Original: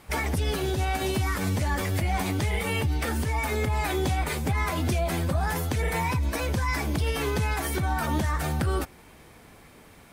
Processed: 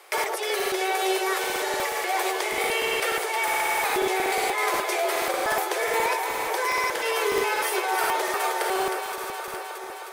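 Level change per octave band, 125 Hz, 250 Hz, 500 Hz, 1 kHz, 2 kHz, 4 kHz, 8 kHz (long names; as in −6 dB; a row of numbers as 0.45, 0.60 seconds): −29.0, −5.0, +5.5, +6.5, +6.0, +6.0, +6.0 decibels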